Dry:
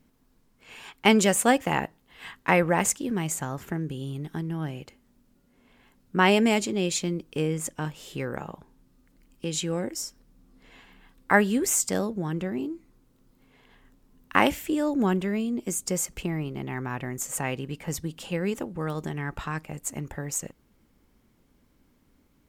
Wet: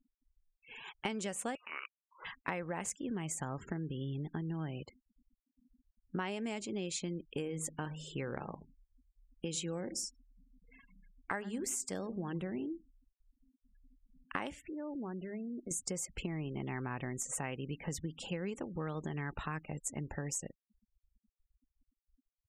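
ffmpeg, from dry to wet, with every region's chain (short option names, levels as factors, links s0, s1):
-filter_complex "[0:a]asettb=1/sr,asplit=3[s0][s1][s2];[s0]atrim=end=1.554[s3];[s1]atrim=start=1.55:end=2.25,asetpts=PTS-STARTPTS,afade=t=in:d=0.004:c=qsin,afade=t=out:st=0.696:d=0.004:c=qsin,highpass=f=880:p=1,acompressor=threshold=0.02:ratio=2:attack=3.2:release=140:knee=1:detection=peak,lowpass=f=2600:t=q:w=0.5098,lowpass=f=2600:t=q:w=0.6013,lowpass=f=2600:t=q:w=0.9,lowpass=f=2600:t=q:w=2.563,afreqshift=-3100[s4];[s2]atrim=start=2.246[s5];[s3][s4]acrossfade=d=0.004:c1=hsin:c2=qsin[s6];[s6][s5]acrossfade=d=0.004:c1=qsin:c2=hsin,asettb=1/sr,asplit=3[s7][s8][s9];[s7]atrim=end=7.284[s10];[s8]atrim=start=7.28:end=12.57,asetpts=PTS-STARTPTS,afade=t=in:d=0.004:c=qsin,afade=t=out:st=5.286:d=0.004:c=qsin,equalizer=f=12000:w=0.96:g=4,bandreject=f=51.95:t=h:w=4,bandreject=f=103.9:t=h:w=4,bandreject=f=155.85:t=h:w=4,bandreject=f=207.8:t=h:w=4,bandreject=f=259.75:t=h:w=4,asplit=2[s11][s12];[s12]adelay=104,lowpass=f=1700:p=1,volume=0.112,asplit=2[s13][s14];[s14]adelay=104,lowpass=f=1700:p=1,volume=0.23[s15];[s11][s13][s15]amix=inputs=3:normalize=0,atrim=end_sample=233289[s16];[s9]atrim=start=12.566[s17];[s10][s16]acrossfade=d=0.004:c1=hsin:c2=qsin[s18];[s18][s17]acrossfade=d=0.004:c1=qsin:c2=hsin,asettb=1/sr,asplit=3[s19][s20][s21];[s19]atrim=end=14.614[s22];[s20]atrim=start=14.61:end=15.71,asetpts=PTS-STARTPTS,afade=t=in:d=0.004:c=qsin,afade=t=out:st=1.096:d=0.004:c=qsin,lowpass=2100,bandreject=f=50:t=h:w=6,bandreject=f=100:t=h:w=6,bandreject=f=150:t=h:w=6,bandreject=f=200:t=h:w=6,acompressor=threshold=0.0141:ratio=4:attack=3.2:release=140:knee=1:detection=peak[s23];[s21]atrim=start=15.706[s24];[s22][s23]acrossfade=d=0.004:c1=hsin:c2=qsin[s25];[s25][s24]acrossfade=d=0.004:c1=qsin:c2=hsin,lowpass=f=11000:w=0.5412,lowpass=f=11000:w=1.3066,afftfilt=real='re*gte(hypot(re,im),0.00708)':imag='im*gte(hypot(re,im),0.00708)':win_size=1024:overlap=0.75,acompressor=threshold=0.0282:ratio=12,volume=0.668"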